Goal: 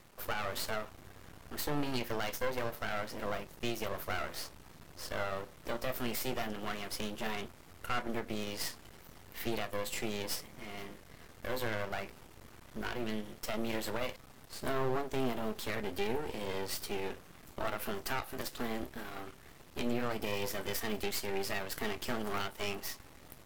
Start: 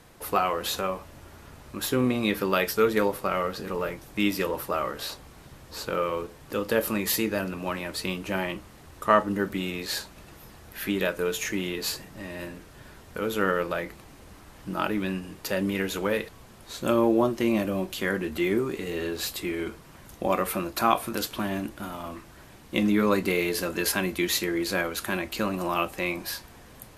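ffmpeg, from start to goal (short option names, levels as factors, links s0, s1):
-af "aeval=exprs='max(val(0),0)':c=same,alimiter=limit=0.112:level=0:latency=1:release=228,asetrate=50715,aresample=44100,volume=0.75"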